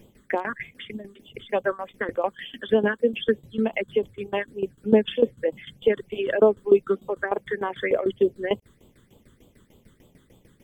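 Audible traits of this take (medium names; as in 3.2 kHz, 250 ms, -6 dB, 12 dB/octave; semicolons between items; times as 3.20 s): tremolo saw down 6.7 Hz, depth 85%; phasing stages 8, 3.3 Hz, lowest notch 700–1800 Hz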